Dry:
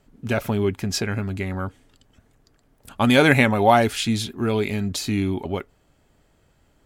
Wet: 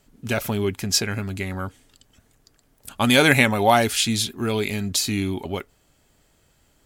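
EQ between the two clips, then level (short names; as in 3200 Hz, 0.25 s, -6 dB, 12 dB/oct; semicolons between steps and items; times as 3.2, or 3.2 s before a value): high shelf 3000 Hz +11 dB; -2.0 dB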